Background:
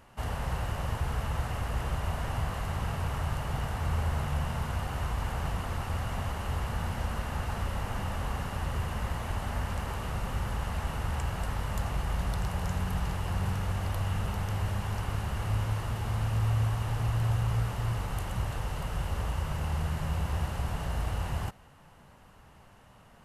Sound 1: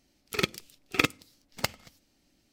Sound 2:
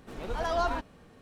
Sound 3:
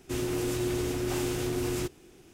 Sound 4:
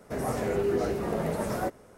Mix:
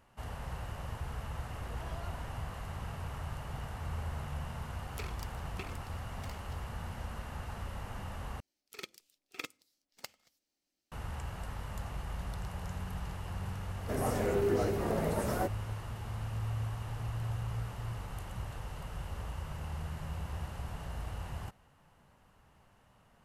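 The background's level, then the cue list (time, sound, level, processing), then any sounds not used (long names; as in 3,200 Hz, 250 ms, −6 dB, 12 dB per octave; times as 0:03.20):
background −8.5 dB
0:01.42: mix in 2 −15 dB + brickwall limiter −26 dBFS
0:04.65: mix in 1 −13 dB + compressor whose output falls as the input rises −34 dBFS
0:08.40: overwrite with 1 −17.5 dB + bass and treble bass −11 dB, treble +4 dB
0:13.78: mix in 4 −3 dB + high-shelf EQ 12,000 Hz +6 dB
not used: 3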